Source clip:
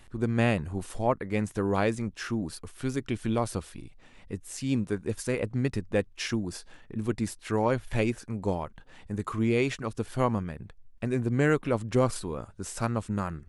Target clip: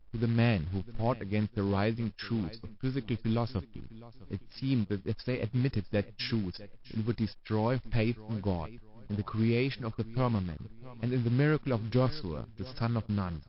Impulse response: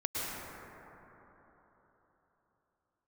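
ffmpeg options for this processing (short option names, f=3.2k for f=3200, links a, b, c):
-af "anlmdn=0.631,bass=f=250:g=7,treble=f=4k:g=12,acrusher=bits=5:mode=log:mix=0:aa=0.000001,aecho=1:1:654|1308:0.106|0.0318,volume=-5.5dB" -ar 12000 -c:a libmp3lame -b:a 32k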